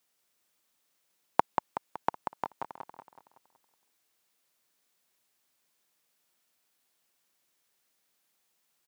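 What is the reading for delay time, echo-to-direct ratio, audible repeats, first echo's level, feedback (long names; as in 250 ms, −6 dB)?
187 ms, −5.0 dB, 5, −6.0 dB, 48%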